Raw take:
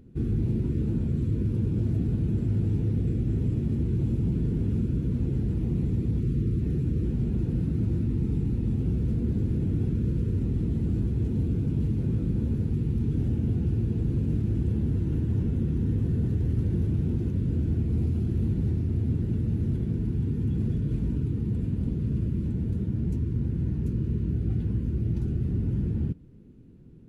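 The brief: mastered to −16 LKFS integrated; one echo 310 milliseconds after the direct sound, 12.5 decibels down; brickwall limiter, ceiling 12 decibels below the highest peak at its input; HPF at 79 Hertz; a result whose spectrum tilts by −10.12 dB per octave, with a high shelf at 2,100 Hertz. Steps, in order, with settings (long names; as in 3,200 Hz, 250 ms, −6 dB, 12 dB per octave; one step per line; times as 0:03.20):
high-pass filter 79 Hz
high-shelf EQ 2,100 Hz −7.5 dB
brickwall limiter −28.5 dBFS
single-tap delay 310 ms −12.5 dB
level +19.5 dB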